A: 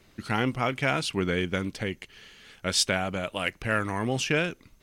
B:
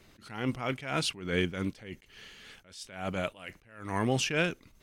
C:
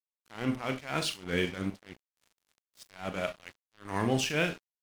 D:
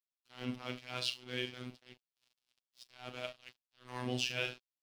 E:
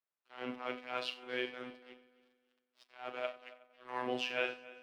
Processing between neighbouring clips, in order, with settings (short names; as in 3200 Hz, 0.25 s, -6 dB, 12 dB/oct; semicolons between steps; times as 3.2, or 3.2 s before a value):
attack slew limiter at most 100 dB/s
Schroeder reverb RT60 0.3 s, combs from 27 ms, DRR 6 dB; crossover distortion -42 dBFS
band shelf 3700 Hz +8.5 dB 1.3 oct; robotiser 125 Hz; gain -8.5 dB
three-band isolator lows -23 dB, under 320 Hz, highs -19 dB, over 2400 Hz; multi-head echo 92 ms, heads first and third, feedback 46%, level -20 dB; gain +6 dB